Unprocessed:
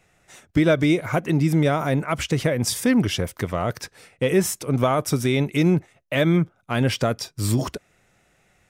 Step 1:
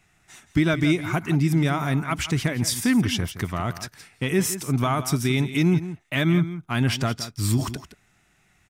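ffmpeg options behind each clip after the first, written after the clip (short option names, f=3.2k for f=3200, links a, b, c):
-af "equalizer=f=520:w=2.6:g=-15,aecho=1:1:169:0.224"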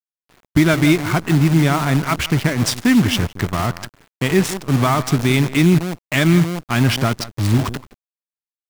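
-af "adynamicsmooth=sensitivity=6.5:basefreq=620,acrusher=bits=6:dc=4:mix=0:aa=0.000001,volume=6.5dB"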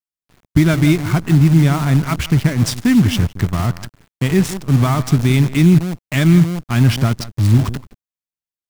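-af "bass=f=250:g=9,treble=f=4k:g=2,volume=-3.5dB"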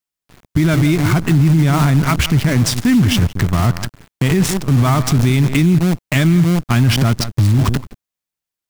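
-af "alimiter=level_in=12.5dB:limit=-1dB:release=50:level=0:latency=1,volume=-5dB"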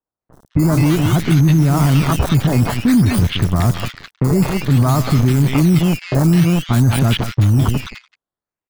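-filter_complex "[0:a]aresample=16000,aresample=44100,acrusher=samples=13:mix=1:aa=0.000001:lfo=1:lforange=13:lforate=0.54,acrossover=split=1600|5100[a][b][c];[c]adelay=30[d];[b]adelay=210[e];[a][e][d]amix=inputs=3:normalize=0"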